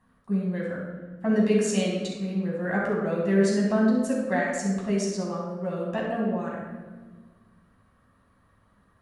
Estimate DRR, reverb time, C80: −4.5 dB, 1.4 s, 3.5 dB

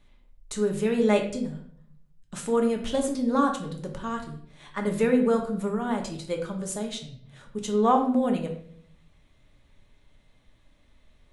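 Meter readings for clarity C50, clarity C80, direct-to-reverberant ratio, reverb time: 8.0 dB, 11.5 dB, 2.0 dB, 0.60 s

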